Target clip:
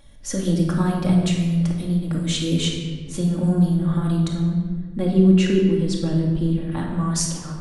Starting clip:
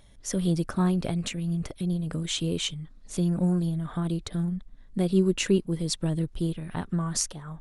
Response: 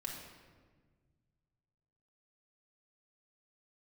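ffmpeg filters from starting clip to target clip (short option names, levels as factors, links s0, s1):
-filter_complex "[0:a]asettb=1/sr,asplit=3[s0][s1][s2];[s0]atrim=end=4.294[s3];[s1]atrim=start=4.29:end=6.72,asetpts=PTS-STARTPTS,afade=t=in:d=0.004:c=qsin,afade=t=out:st=2.426:d=0.004:c=qsin,lowpass=f=2900:p=1[s4];[s2]atrim=start=6.716[s5];[s3][s4]acrossfade=d=0.004:c1=hsin:c2=qsin[s6];[s6][s5]acrossfade=d=0.004:c1=qsin:c2=hsin[s7];[1:a]atrim=start_sample=2205[s8];[s7][s8]afir=irnorm=-1:irlink=0,volume=2"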